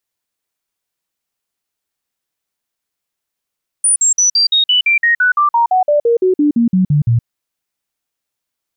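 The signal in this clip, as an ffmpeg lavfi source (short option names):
-f lavfi -i "aevalsrc='0.376*clip(min(mod(t,0.17),0.12-mod(t,0.17))/0.005,0,1)*sin(2*PI*9430*pow(2,-floor(t/0.17)/3)*mod(t,0.17))':d=3.4:s=44100"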